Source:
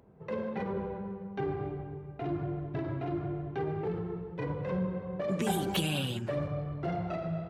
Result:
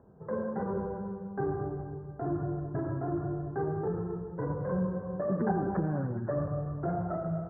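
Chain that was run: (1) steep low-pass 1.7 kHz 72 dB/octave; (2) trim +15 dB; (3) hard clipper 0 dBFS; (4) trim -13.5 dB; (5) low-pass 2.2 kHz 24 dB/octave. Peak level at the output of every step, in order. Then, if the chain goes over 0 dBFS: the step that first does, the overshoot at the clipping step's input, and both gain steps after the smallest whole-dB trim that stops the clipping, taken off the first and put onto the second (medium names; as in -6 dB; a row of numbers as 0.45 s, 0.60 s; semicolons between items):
-18.5 dBFS, -3.5 dBFS, -3.5 dBFS, -17.0 dBFS, -17.0 dBFS; nothing clips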